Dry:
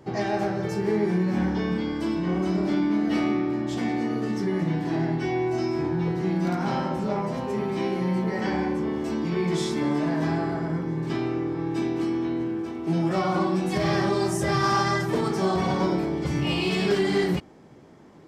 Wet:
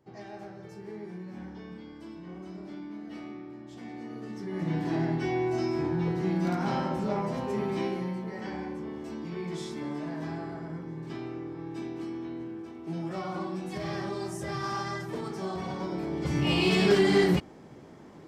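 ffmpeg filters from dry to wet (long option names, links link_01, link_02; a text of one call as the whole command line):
ffmpeg -i in.wav -af "volume=8.5dB,afade=type=in:start_time=3.71:duration=0.77:silence=0.473151,afade=type=in:start_time=4.48:duration=0.29:silence=0.398107,afade=type=out:start_time=7.77:duration=0.41:silence=0.421697,afade=type=in:start_time=15.89:duration=0.78:silence=0.266073" out.wav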